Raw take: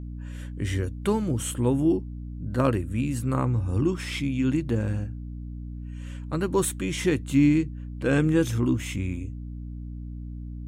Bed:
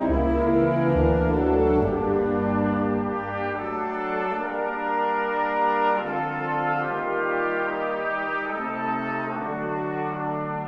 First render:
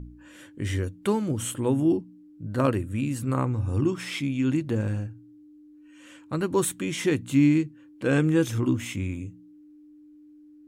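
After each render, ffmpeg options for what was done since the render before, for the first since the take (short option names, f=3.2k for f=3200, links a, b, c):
-af "bandreject=f=60:t=h:w=4,bandreject=f=120:t=h:w=4,bandreject=f=180:t=h:w=4,bandreject=f=240:t=h:w=4"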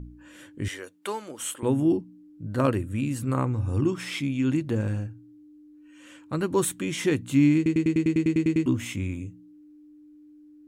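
-filter_complex "[0:a]asettb=1/sr,asplit=3[a][b][c];[a]atrim=end=0.684[d];[b]atrim=start=0.68:end=1.63,asetpts=PTS-STARTPTS,afade=t=in:d=0.004:c=qsin,afade=t=out:st=0.946:d=0.004:c=qsin,highpass=590[e];[c]atrim=start=1.626[f];[d][e]acrossfade=d=0.004:c1=hsin:c2=qsin[g];[g][f]acrossfade=d=0.004:c1=qsin:c2=hsin,asplit=12[h][i][j][k][l][m][n][o][p][q][r][s];[h]atrim=end=7.662[t];[i]atrim=start=7.558:end=7.662[u];[j]atrim=start=7.558:end=7.662[v];[k]atrim=start=7.558:end=7.662[w];[l]atrim=start=7.558:end=7.662[x];[m]atrim=start=7.558:end=7.662[y];[n]atrim=start=7.558:end=7.662[z];[o]atrim=start=7.558:end=7.662[aa];[p]atrim=start=7.558:end=7.662[ab];[q]atrim=start=7.558:end=7.662[ac];[r]atrim=start=7.558:end=7.662[ad];[s]atrim=start=8.658[ae];[t][u]acrossfade=d=0.004:c1=hsin:c2=hsin[af];[af][v]acrossfade=d=0.004:c1=hsin:c2=hsin[ag];[ag][w]acrossfade=d=0.004:c1=hsin:c2=hsin[ah];[ah][x]acrossfade=d=0.004:c1=hsin:c2=hsin[ai];[ai][y]acrossfade=d=0.004:c1=hsin:c2=hsin[aj];[aj][z]acrossfade=d=0.004:c1=hsin:c2=hsin[ak];[ak][aa]acrossfade=d=0.004:c1=hsin:c2=hsin[al];[al][ab]acrossfade=d=0.004:c1=hsin:c2=hsin[am];[am][ac]acrossfade=d=0.004:c1=hsin:c2=hsin[an];[an][ad]acrossfade=d=0.004:c1=hsin:c2=hsin[ao];[ao][ae]acrossfade=d=0.004:c1=hsin:c2=hsin"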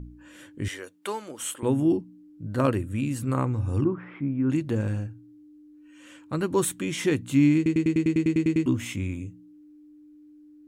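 -filter_complex "[0:a]asettb=1/sr,asplit=3[a][b][c];[a]atrim=end=3.844[d];[b]atrim=start=3.84:end=4.5,asetpts=PTS-STARTPTS,afade=t=in:d=0.004:c=qsin,afade=t=out:st=0.656:d=0.004:c=qsin,lowpass=f=1.5k:w=0.5412,lowpass=f=1.5k:w=1.3066[e];[c]atrim=start=4.496[f];[d][e]acrossfade=d=0.004:c1=hsin:c2=qsin[g];[g][f]acrossfade=d=0.004:c1=qsin:c2=hsin"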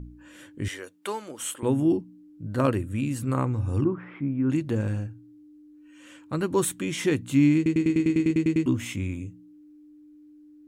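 -filter_complex "[0:a]asettb=1/sr,asplit=3[a][b][c];[a]atrim=end=7.774[d];[b]atrim=start=7.77:end=8.31,asetpts=PTS-STARTPTS,afade=t=in:d=0.004:c=qsin,afade=t=out:st=0.536:d=0.004:c=qsin,asplit=2[e][f];[f]adelay=41,volume=-11dB[g];[e][g]amix=inputs=2:normalize=0,atrim=end_sample=23814[h];[c]atrim=start=8.306[i];[d][h]acrossfade=d=0.004:c1=hsin:c2=qsin[j];[j][i]acrossfade=d=0.004:c1=qsin:c2=hsin"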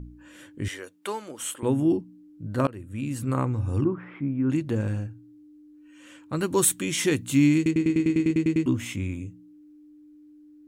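-filter_complex "[0:a]asettb=1/sr,asplit=3[a][b][c];[a]atrim=end=6.364[d];[b]atrim=start=6.36:end=7.71,asetpts=PTS-STARTPTS,afade=t=in:d=0.004:c=qsin,afade=t=out:st=1.346:d=0.004:c=qsin,highshelf=f=3.4k:g=9[e];[c]atrim=start=7.706[f];[d][e]acrossfade=d=0.004:c1=hsin:c2=qsin[g];[g][f]acrossfade=d=0.004:c1=qsin:c2=hsin,asplit=2[h][i];[h]atrim=end=2.67,asetpts=PTS-STARTPTS,afade=t=out:st=2.666:d=0.004:c=hsin:silence=0.0707946[j];[i]atrim=start=2.67,asetpts=PTS-STARTPTS,afade=t=in:d=0.54:silence=0.0707946[k];[j][k]concat=n=2:v=0:a=1"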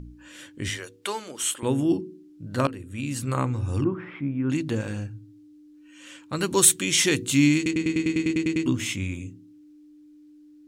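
-af "equalizer=f=4.7k:t=o:w=2.4:g=9,bandreject=f=52.99:t=h:w=4,bandreject=f=105.98:t=h:w=4,bandreject=f=158.97:t=h:w=4,bandreject=f=211.96:t=h:w=4,bandreject=f=264.95:t=h:w=4,bandreject=f=317.94:t=h:w=4,bandreject=f=370.93:t=h:w=4,bandreject=f=423.92:t=h:w=4,bandreject=f=476.91:t=h:w=4"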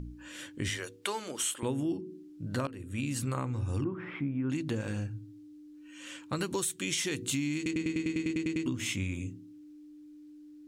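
-af "alimiter=limit=-13.5dB:level=0:latency=1:release=351,acompressor=threshold=-30dB:ratio=4"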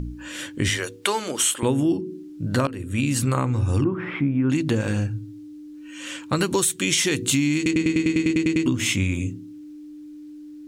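-af "volume=11dB"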